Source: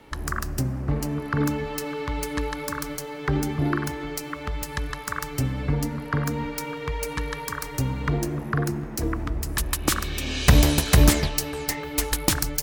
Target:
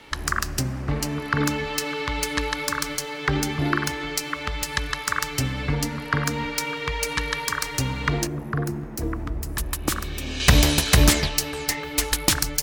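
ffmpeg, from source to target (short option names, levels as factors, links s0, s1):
-af "asetnsamples=n=441:p=0,asendcmd='8.27 equalizer g -2.5;10.4 equalizer g 6',equalizer=f=3800:w=0.35:g=11,volume=0.891"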